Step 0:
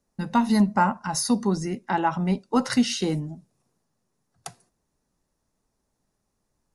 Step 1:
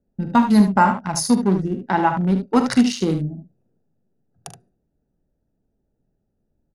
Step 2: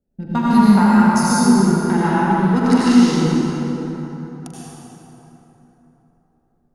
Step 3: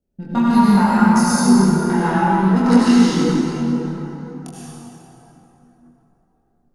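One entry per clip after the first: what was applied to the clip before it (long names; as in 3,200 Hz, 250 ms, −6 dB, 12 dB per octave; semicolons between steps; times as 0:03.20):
adaptive Wiener filter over 41 samples; on a send: ambience of single reflections 42 ms −12 dB, 74 ms −8.5 dB; on the sum: level +5.5 dB
dynamic equaliser 590 Hz, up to −5 dB, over −27 dBFS, Q 0.88; dense smooth reverb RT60 3.7 s, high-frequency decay 0.55×, pre-delay 75 ms, DRR −8.5 dB; level −4.5 dB
multi-voice chorus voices 4, 0.32 Hz, delay 24 ms, depth 2.7 ms; level +3 dB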